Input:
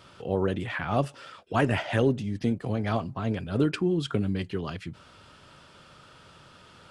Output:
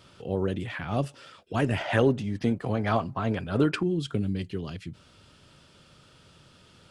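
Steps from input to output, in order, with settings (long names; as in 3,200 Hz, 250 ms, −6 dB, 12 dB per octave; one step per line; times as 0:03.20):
parametric band 1,100 Hz −5.5 dB 2.1 octaves, from 0:01.81 +5 dB, from 0:03.83 −8.5 dB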